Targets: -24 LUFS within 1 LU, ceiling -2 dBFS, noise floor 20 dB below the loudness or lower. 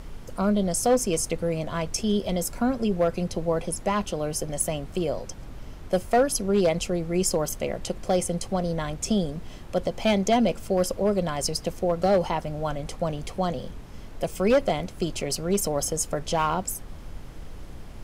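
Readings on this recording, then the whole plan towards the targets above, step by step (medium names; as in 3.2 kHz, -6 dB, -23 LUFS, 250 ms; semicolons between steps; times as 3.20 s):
clipped samples 0.5%; clipping level -14.5 dBFS; noise floor -41 dBFS; noise floor target -46 dBFS; loudness -26.0 LUFS; peak level -14.5 dBFS; loudness target -24.0 LUFS
-> clip repair -14.5 dBFS; noise print and reduce 6 dB; trim +2 dB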